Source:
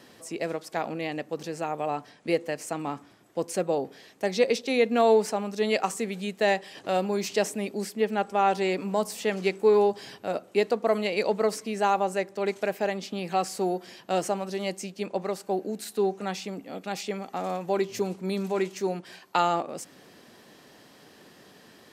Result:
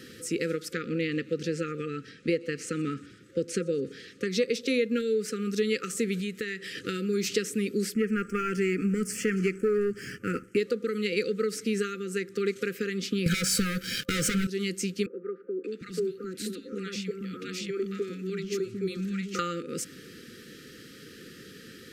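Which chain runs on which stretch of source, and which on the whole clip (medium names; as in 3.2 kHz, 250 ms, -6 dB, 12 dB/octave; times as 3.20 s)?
0.73–4.31 s: distance through air 55 m + feedback echo behind a high-pass 123 ms, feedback 63%, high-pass 2.7 kHz, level -20 dB
6.20–6.81 s: compression 3:1, threshold -38 dBFS + peaking EQ 2 kHz +4.5 dB 0.44 oct
7.94–10.57 s: low-pass 9.6 kHz + waveshaping leveller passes 1 + static phaser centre 1.6 kHz, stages 4
13.26–14.47 s: comb 1.3 ms, depth 88% + waveshaping leveller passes 5 + upward expansion, over -26 dBFS
15.06–19.39 s: treble shelf 8.1 kHz -9.5 dB + compression 1.5:1, threshold -42 dBFS + three bands offset in time mids, highs, lows 580/750 ms, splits 270/1300 Hz
whole clip: bass shelf 140 Hz +6 dB; compression 5:1, threshold -29 dBFS; FFT band-reject 530–1200 Hz; trim +5.5 dB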